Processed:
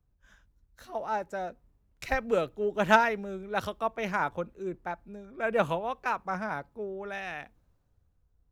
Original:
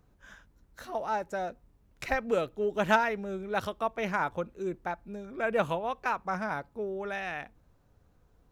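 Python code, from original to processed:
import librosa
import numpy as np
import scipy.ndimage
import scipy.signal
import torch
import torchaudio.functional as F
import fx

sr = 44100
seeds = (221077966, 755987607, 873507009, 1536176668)

y = fx.band_widen(x, sr, depth_pct=40)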